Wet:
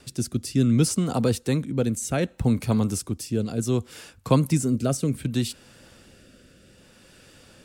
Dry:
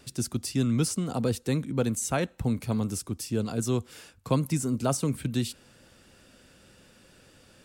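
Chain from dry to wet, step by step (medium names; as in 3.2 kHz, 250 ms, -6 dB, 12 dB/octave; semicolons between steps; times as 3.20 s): rotary cabinet horn 0.65 Hz; trim +6 dB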